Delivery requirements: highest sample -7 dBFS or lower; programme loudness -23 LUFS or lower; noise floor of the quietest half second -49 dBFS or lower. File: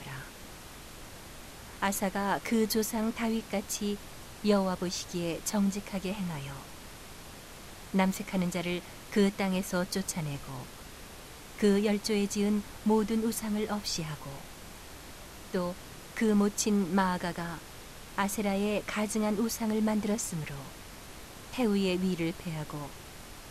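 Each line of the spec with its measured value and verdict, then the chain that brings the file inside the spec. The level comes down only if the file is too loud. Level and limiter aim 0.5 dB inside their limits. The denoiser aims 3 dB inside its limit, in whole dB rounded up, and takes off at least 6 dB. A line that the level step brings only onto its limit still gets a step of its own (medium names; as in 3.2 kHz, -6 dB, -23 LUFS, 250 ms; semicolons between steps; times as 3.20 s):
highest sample -14.0 dBFS: pass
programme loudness -31.0 LUFS: pass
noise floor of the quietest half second -47 dBFS: fail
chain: noise reduction 6 dB, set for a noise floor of -47 dBFS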